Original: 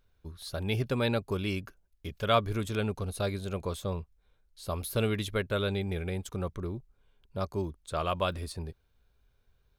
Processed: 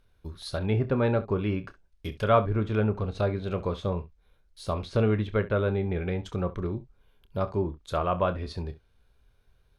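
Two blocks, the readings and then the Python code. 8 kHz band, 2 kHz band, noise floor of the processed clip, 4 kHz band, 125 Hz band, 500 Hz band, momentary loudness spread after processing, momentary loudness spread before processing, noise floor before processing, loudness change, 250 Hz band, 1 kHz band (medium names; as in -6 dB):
no reading, 0.0 dB, -65 dBFS, -5.0 dB, +5.0 dB, +5.0 dB, 13 LU, 14 LU, -71 dBFS, +4.0 dB, +4.5 dB, +3.5 dB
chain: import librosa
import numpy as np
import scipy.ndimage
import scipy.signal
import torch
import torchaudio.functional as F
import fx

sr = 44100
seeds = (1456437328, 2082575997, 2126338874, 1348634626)

y = np.repeat(scipy.signal.resample_poly(x, 1, 3), 3)[:len(x)]
y = fx.env_lowpass_down(y, sr, base_hz=1500.0, full_db=-27.0)
y = fx.room_early_taps(y, sr, ms=(28, 67), db=(-11.5, -17.0))
y = y * 10.0 ** (4.5 / 20.0)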